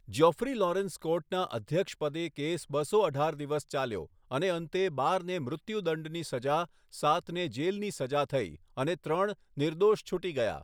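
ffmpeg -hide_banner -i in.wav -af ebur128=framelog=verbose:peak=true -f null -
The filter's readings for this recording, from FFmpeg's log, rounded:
Integrated loudness:
  I:         -31.5 LUFS
  Threshold: -41.5 LUFS
Loudness range:
  LRA:         1.4 LU
  Threshold: -51.9 LUFS
  LRA low:   -32.6 LUFS
  LRA high:  -31.2 LUFS
True peak:
  Peak:      -11.2 dBFS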